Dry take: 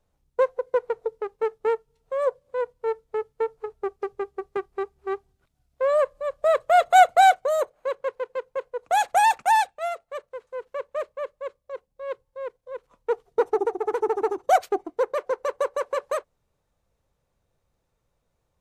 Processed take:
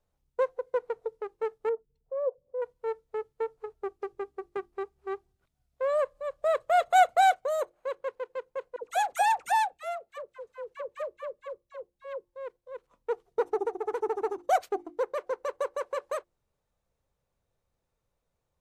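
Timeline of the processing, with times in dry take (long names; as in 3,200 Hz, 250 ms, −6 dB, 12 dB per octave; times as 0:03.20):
0:01.69–0:02.62: spectral envelope exaggerated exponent 2
0:08.76–0:12.25: all-pass dispersion lows, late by 79 ms, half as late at 750 Hz
whole clip: mains-hum notches 50/100/150/200/250/300/350 Hz; level −6 dB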